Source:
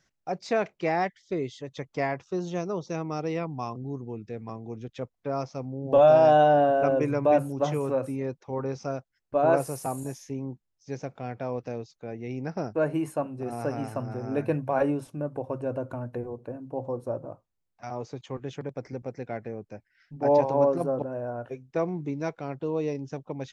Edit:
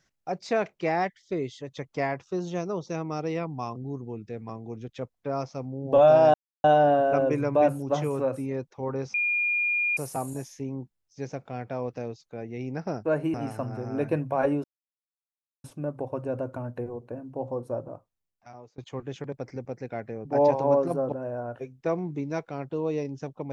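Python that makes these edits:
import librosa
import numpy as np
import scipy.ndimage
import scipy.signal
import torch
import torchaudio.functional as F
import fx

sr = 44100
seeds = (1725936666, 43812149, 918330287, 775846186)

y = fx.edit(x, sr, fx.insert_silence(at_s=6.34, length_s=0.3),
    fx.bleep(start_s=8.84, length_s=0.83, hz=2420.0, db=-22.5),
    fx.cut(start_s=13.04, length_s=0.67),
    fx.insert_silence(at_s=15.01, length_s=1.0),
    fx.fade_out_to(start_s=17.21, length_s=0.94, floor_db=-23.5),
    fx.cut(start_s=19.62, length_s=0.53), tone=tone)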